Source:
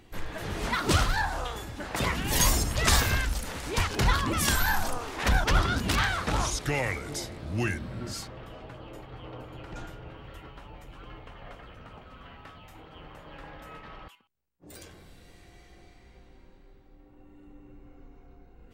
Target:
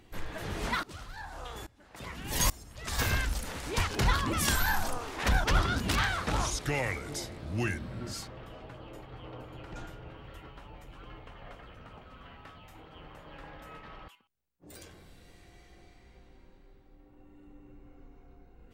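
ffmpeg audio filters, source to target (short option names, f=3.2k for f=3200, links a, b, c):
-filter_complex "[0:a]asplit=3[a][b][c];[a]afade=t=out:st=0.79:d=0.02[d];[b]aeval=exprs='val(0)*pow(10,-23*if(lt(mod(-1.2*n/s,1),2*abs(-1.2)/1000),1-mod(-1.2*n/s,1)/(2*abs(-1.2)/1000),(mod(-1.2*n/s,1)-2*abs(-1.2)/1000)/(1-2*abs(-1.2)/1000))/20)':c=same,afade=t=in:st=0.79:d=0.02,afade=t=out:st=2.98:d=0.02[e];[c]afade=t=in:st=2.98:d=0.02[f];[d][e][f]amix=inputs=3:normalize=0,volume=-2.5dB"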